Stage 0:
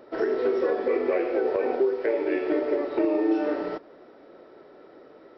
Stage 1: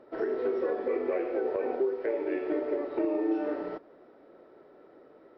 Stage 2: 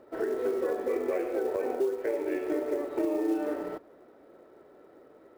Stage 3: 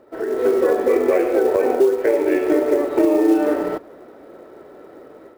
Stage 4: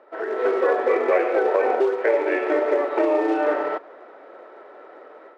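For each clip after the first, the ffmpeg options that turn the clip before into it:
-af "lowpass=f=2.1k:p=1,volume=-5dB"
-af "acrusher=bits=7:mode=log:mix=0:aa=0.000001,equalizer=f=74:w=2.3:g=7"
-af "dynaudnorm=f=240:g=3:m=9dB,volume=4dB"
-af "highpass=690,lowpass=2.6k,volume=4.5dB"

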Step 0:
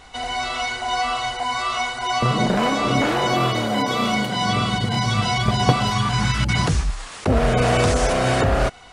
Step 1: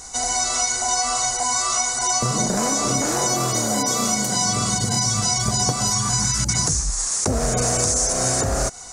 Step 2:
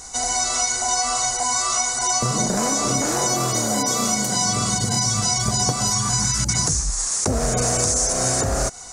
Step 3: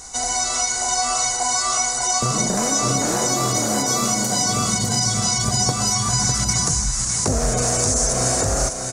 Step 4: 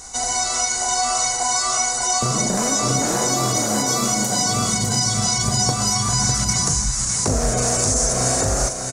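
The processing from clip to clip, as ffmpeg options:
-af "highshelf=f=4.5k:t=q:w=3:g=14,acompressor=threshold=-19dB:ratio=6,volume=1.5dB"
-af anull
-af "aecho=1:1:603:0.473"
-filter_complex "[0:a]asplit=2[a][b];[b]adelay=38,volume=-11dB[c];[a][c]amix=inputs=2:normalize=0"

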